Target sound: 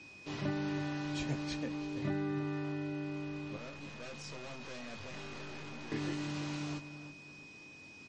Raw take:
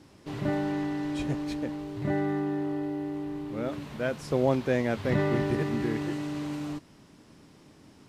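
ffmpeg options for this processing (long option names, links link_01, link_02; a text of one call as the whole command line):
ffmpeg -i in.wav -filter_complex "[0:a]asettb=1/sr,asplit=3[link_01][link_02][link_03];[link_01]atrim=end=3.564[link_04];[link_02]atrim=start=3.56:end=5.92,asetpts=PTS-STARTPTS,afade=type=in:duration=0.004:curve=qsin,afade=type=out:start_time=2.356:duration=0.004:curve=qsin,aeval=exprs='(tanh(126*val(0)+0.5)-tanh(0.5))/126':channel_layout=same[link_05];[link_03]atrim=start=5.916[link_06];[link_04][link_05]acrossfade=duration=0.004:curve1=hsin:curve2=qsin[link_07];[link_07][link_06]acrossfade=duration=0.004:curve1=qsin:curve2=hsin,lowpass=frequency=6600:width=0.5412,lowpass=frequency=6600:width=1.3066,lowshelf=frequency=320:gain=-4,asplit=2[link_08][link_09];[link_09]adelay=21,volume=-7dB[link_10];[link_08][link_10]amix=inputs=2:normalize=0,asplit=2[link_11][link_12];[link_12]adelay=326,lowpass=frequency=1800:poles=1,volume=-10dB,asplit=2[link_13][link_14];[link_14]adelay=326,lowpass=frequency=1800:poles=1,volume=0.35,asplit=2[link_15][link_16];[link_16]adelay=326,lowpass=frequency=1800:poles=1,volume=0.35,asplit=2[link_17][link_18];[link_18]adelay=326,lowpass=frequency=1800:poles=1,volume=0.35[link_19];[link_11][link_13][link_15][link_17][link_19]amix=inputs=5:normalize=0,aeval=exprs='val(0)+0.00282*sin(2*PI*2500*n/s)':channel_layout=same,acrossover=split=220[link_20][link_21];[link_21]acompressor=threshold=-32dB:ratio=5[link_22];[link_20][link_22]amix=inputs=2:normalize=0,highshelf=frequency=4300:gain=10.5,volume=-3.5dB" -ar 44100 -c:a libmp3lame -b:a 40k out.mp3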